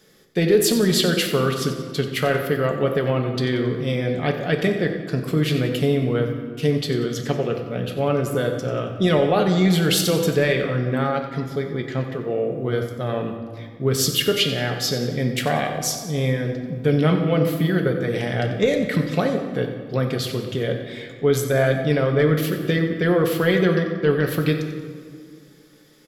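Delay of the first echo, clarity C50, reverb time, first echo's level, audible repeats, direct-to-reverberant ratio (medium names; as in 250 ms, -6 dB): 91 ms, 6.0 dB, 2.0 s, -12.0 dB, 2, 2.5 dB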